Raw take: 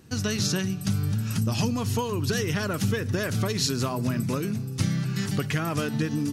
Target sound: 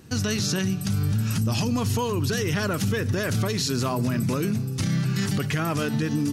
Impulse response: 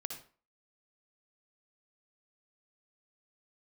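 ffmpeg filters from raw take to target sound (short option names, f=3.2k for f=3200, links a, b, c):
-af "alimiter=limit=-20.5dB:level=0:latency=1:release=22,volume=4dB"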